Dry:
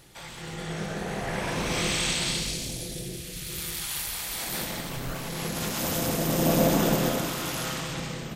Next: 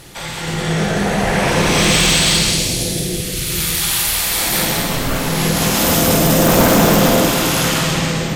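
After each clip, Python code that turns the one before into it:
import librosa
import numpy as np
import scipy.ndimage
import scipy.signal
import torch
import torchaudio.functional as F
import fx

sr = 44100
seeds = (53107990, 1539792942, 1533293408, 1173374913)

y = fx.fold_sine(x, sr, drive_db=10, ceiling_db=-10.0)
y = fx.echo_multitap(y, sr, ms=(50, 187), db=(-5.0, -6.0))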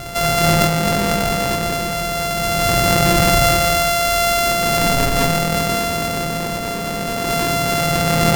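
y = np.r_[np.sort(x[:len(x) // 64 * 64].reshape(-1, 64), axis=1).ravel(), x[len(x) // 64 * 64:]]
y = fx.over_compress(y, sr, threshold_db=-22.0, ratio=-1.0)
y = y * librosa.db_to_amplitude(4.0)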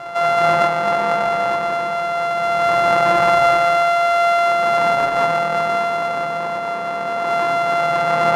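y = fx.bandpass_q(x, sr, hz=980.0, q=1.6)
y = fx.room_shoebox(y, sr, seeds[0], volume_m3=850.0, walls='furnished', distance_m=0.8)
y = y * librosa.db_to_amplitude(4.5)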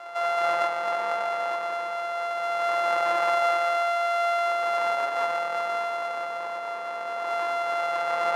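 y = scipy.signal.sosfilt(scipy.signal.butter(2, 490.0, 'highpass', fs=sr, output='sos'), x)
y = y * librosa.db_to_amplitude(-8.5)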